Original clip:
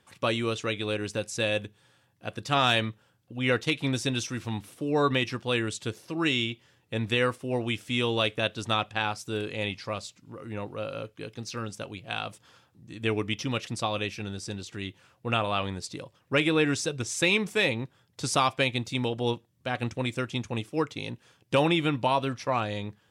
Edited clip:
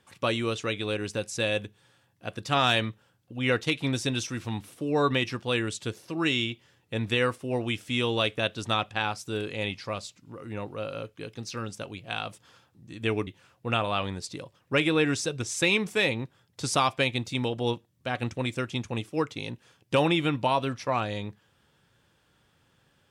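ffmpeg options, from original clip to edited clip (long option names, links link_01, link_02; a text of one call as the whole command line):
ffmpeg -i in.wav -filter_complex "[0:a]asplit=2[link_01][link_02];[link_01]atrim=end=13.272[link_03];[link_02]atrim=start=14.868[link_04];[link_03][link_04]acrossfade=duration=0.004:curve1=hsin:curve2=hsin" out.wav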